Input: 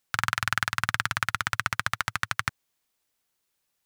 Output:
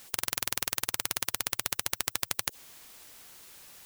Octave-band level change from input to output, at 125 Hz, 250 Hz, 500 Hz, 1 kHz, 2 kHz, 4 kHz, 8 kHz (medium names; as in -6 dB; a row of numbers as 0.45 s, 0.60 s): -13.0 dB, -3.5 dB, +2.5 dB, -11.5 dB, -11.5 dB, -1.0 dB, +6.0 dB